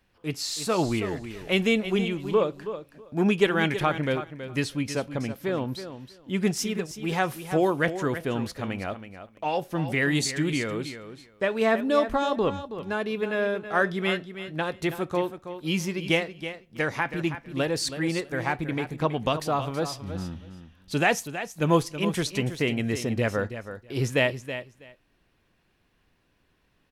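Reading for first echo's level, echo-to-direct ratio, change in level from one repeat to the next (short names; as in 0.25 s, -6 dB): -11.0 dB, -11.0 dB, -16.0 dB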